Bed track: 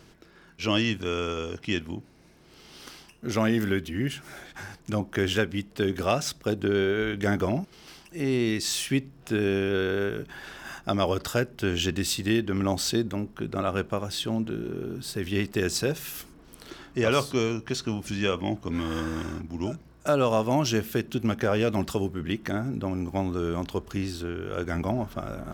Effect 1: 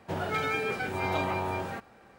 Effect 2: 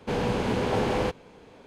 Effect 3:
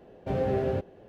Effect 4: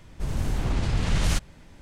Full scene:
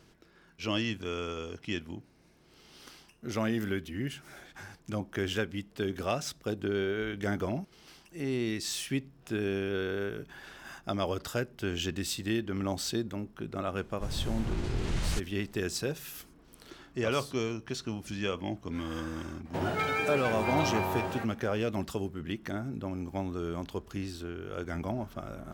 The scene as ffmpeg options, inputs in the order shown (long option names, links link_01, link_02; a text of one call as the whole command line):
ffmpeg -i bed.wav -i cue0.wav -i cue1.wav -i cue2.wav -i cue3.wav -filter_complex "[0:a]volume=-6.5dB[link_01];[4:a]atrim=end=1.81,asetpts=PTS-STARTPTS,volume=-8dB,afade=type=in:duration=0.004:curve=hsin,afade=type=out:start_time=1.806:duration=0.004:curve=hsin,adelay=13810[link_02];[1:a]atrim=end=2.18,asetpts=PTS-STARTPTS,volume=-0.5dB,afade=type=in:duration=0.004:curve=hsin,afade=type=out:start_time=2.176:duration=0.004:curve=hsin,adelay=19450[link_03];[link_01][link_02][link_03]amix=inputs=3:normalize=0" out.wav